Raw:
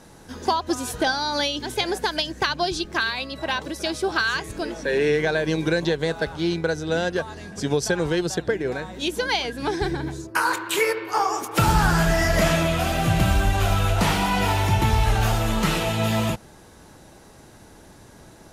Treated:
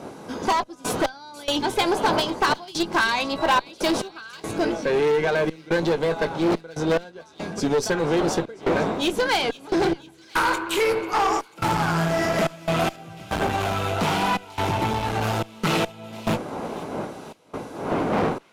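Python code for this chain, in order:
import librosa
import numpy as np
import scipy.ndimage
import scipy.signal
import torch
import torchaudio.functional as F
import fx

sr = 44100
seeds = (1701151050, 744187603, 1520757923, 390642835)

y = fx.dmg_wind(x, sr, seeds[0], corner_hz=630.0, level_db=-36.0)
y = fx.doubler(y, sr, ms=18.0, db=-10.5)
y = fx.step_gate(y, sr, bpm=71, pattern='xxx.x..xxxxx.x', floor_db=-24.0, edge_ms=4.5)
y = fx.rider(y, sr, range_db=4, speed_s=0.5)
y = fx.high_shelf(y, sr, hz=4200.0, db=-9.0)
y = fx.notch(y, sr, hz=1800.0, q=6.0)
y = np.clip(y, -10.0 ** (-19.0 / 20.0), 10.0 ** (-19.0 / 20.0))
y = scipy.signal.sosfilt(scipy.signal.butter(2, 160.0, 'highpass', fs=sr, output='sos'), y)
y = fx.echo_wet_highpass(y, sr, ms=492, feedback_pct=50, hz=2600.0, wet_db=-17)
y = fx.tube_stage(y, sr, drive_db=21.0, bias=0.5)
y = fx.peak_eq(y, sr, hz=950.0, db=6.0, octaves=0.52, at=(1.5, 3.71))
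y = y * librosa.db_to_amplitude(6.5)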